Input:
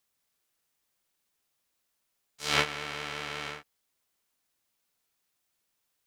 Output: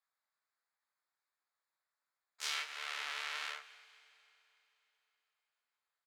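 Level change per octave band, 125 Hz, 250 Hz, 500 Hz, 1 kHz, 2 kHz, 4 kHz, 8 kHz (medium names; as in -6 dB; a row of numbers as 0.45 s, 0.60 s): under -40 dB, under -30 dB, -20.0 dB, -10.0 dB, -7.5 dB, -7.0 dB, -6.0 dB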